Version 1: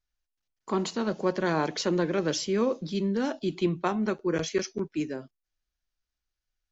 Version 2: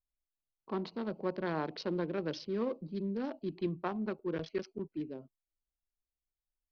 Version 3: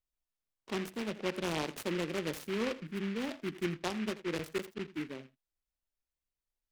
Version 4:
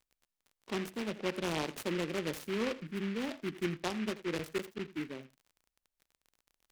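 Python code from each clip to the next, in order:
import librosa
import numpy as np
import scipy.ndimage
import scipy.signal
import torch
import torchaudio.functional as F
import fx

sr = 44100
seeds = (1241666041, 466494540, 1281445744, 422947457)

y1 = fx.wiener(x, sr, points=25)
y1 = scipy.signal.sosfilt(scipy.signal.butter(8, 5100.0, 'lowpass', fs=sr, output='sos'), y1)
y1 = y1 * librosa.db_to_amplitude(-8.0)
y2 = y1 + 10.0 ** (-16.5 / 20.0) * np.pad(y1, (int(83 * sr / 1000.0), 0))[:len(y1)]
y2 = fx.noise_mod_delay(y2, sr, seeds[0], noise_hz=1900.0, depth_ms=0.15)
y3 = fx.dmg_crackle(y2, sr, seeds[1], per_s=35.0, level_db=-49.0)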